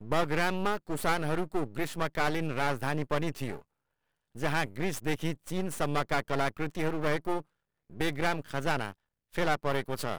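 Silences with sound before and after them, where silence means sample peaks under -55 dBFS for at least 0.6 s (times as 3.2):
3.62–4.35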